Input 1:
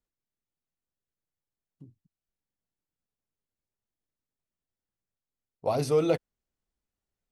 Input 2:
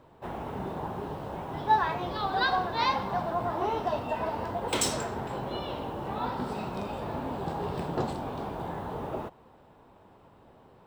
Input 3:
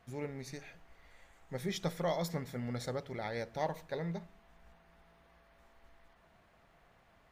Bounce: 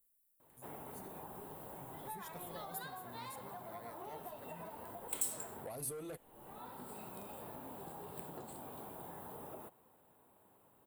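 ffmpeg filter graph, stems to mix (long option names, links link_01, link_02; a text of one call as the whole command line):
ffmpeg -i stem1.wav -i stem2.wav -i stem3.wav -filter_complex "[0:a]volume=-3dB,asplit=2[link_01][link_02];[1:a]highpass=frequency=150:poles=1,adelay=400,volume=-12dB[link_03];[2:a]acompressor=mode=upward:threshold=-46dB:ratio=2.5,adelay=500,volume=-18dB[link_04];[link_02]apad=whole_len=496834[link_05];[link_03][link_05]sidechaincompress=threshold=-32dB:ratio=8:attack=16:release=1260[link_06];[link_01][link_06]amix=inputs=2:normalize=0,asoftclip=type=tanh:threshold=-27dB,acompressor=threshold=-46dB:ratio=6,volume=0dB[link_07];[link_04][link_07]amix=inputs=2:normalize=0,aexciter=amount=14.3:drive=5:freq=8200" out.wav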